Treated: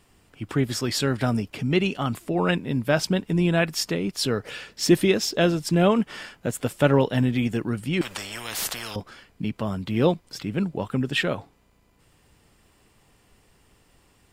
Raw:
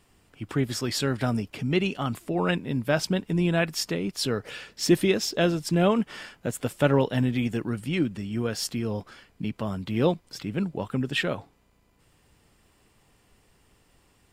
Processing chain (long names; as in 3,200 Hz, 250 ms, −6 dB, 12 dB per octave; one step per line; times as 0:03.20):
0:08.01–0:08.96: every bin compressed towards the loudest bin 10 to 1
level +2.5 dB